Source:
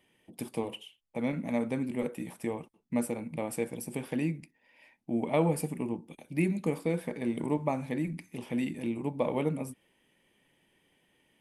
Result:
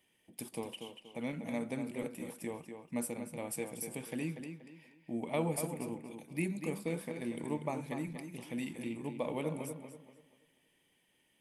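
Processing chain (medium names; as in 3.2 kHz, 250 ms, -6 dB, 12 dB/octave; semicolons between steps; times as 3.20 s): treble shelf 3.1 kHz +9 dB; tape echo 240 ms, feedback 36%, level -6.5 dB, low-pass 4.6 kHz; trim -7.5 dB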